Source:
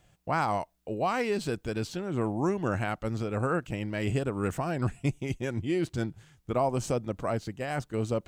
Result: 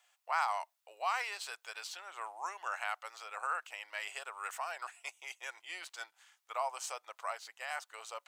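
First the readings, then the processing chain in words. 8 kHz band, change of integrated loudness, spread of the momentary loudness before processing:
-1.5 dB, -9.0 dB, 5 LU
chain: inverse Chebyshev high-pass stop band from 250 Hz, stop band 60 dB; band-stop 1.6 kHz, Q 25; trim -1.5 dB

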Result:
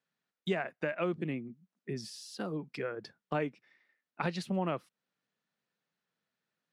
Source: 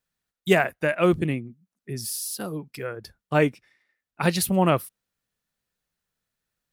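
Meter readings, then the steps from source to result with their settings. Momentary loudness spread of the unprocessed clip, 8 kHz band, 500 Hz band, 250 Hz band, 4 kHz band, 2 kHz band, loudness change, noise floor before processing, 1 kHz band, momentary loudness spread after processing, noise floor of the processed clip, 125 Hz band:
14 LU, -20.5 dB, -11.5 dB, -11.0 dB, -11.5 dB, -12.5 dB, -12.0 dB, under -85 dBFS, -11.5 dB, 9 LU, under -85 dBFS, -12.0 dB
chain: high-pass 150 Hz 24 dB/octave; compression 3:1, threshold -33 dBFS, peak gain reduction 15 dB; distance through air 130 m

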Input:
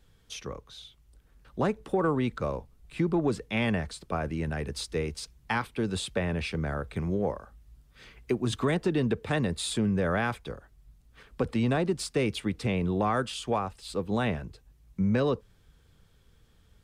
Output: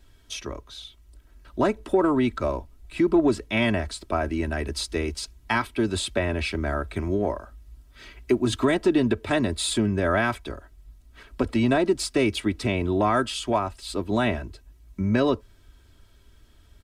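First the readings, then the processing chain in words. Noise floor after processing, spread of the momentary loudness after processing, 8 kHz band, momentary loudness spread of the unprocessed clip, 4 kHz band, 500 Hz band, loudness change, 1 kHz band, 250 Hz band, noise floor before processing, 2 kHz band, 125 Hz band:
-55 dBFS, 14 LU, +6.0 dB, 13 LU, +6.0 dB, +5.0 dB, +5.0 dB, +5.0 dB, +5.5 dB, -62 dBFS, +5.5 dB, +1.0 dB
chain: comb 3.1 ms, depth 72%; trim +4 dB

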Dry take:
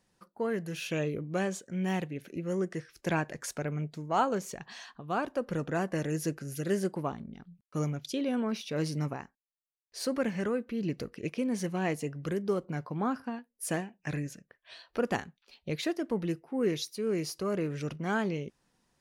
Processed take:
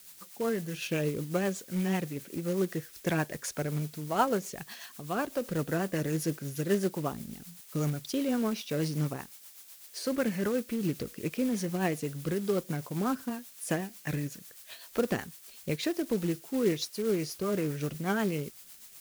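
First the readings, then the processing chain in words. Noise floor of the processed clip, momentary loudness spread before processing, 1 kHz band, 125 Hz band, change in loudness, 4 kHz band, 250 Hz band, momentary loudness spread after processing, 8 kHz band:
-53 dBFS, 9 LU, -1.0 dB, +1.5 dB, +1.0 dB, +1.5 dB, +1.5 dB, 12 LU, +2.5 dB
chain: added noise blue -50 dBFS; rotary cabinet horn 8 Hz; short-mantissa float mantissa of 2-bit; trim +3 dB

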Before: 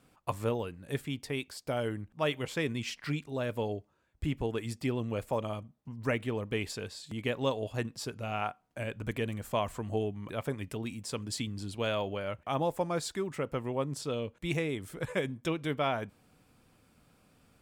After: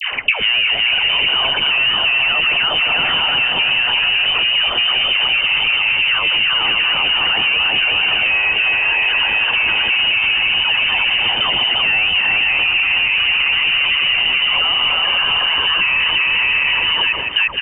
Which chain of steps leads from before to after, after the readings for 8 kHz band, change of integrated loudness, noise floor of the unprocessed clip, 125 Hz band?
under -20 dB, +22.0 dB, -67 dBFS, -3.0 dB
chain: chunks repeated in reverse 590 ms, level -7 dB; dynamic bell 740 Hz, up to +7 dB, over -49 dBFS, Q 2.4; on a send: bouncing-ball echo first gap 350 ms, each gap 0.6×, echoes 5; on the sum: compression, threshold -34 dBFS, peak gain reduction 12 dB; waveshaping leveller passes 3; high-pass 290 Hz 24 dB/octave; delay 162 ms -17.5 dB; frequency inversion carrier 3.3 kHz; bass shelf 500 Hz -5.5 dB; phase dispersion lows, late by 126 ms, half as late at 900 Hz; loudness maximiser +29 dB; three bands compressed up and down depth 100%; trim -7.5 dB

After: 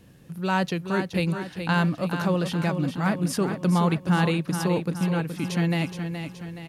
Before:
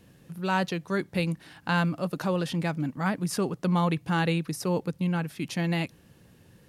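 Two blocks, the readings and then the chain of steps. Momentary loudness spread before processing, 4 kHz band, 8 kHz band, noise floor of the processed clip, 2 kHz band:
5 LU, +2.5 dB, +2.5 dB, -49 dBFS, +2.5 dB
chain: bass shelf 210 Hz +3 dB; on a send: feedback delay 422 ms, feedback 50%, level -8 dB; on the sum: trim +1.5 dB

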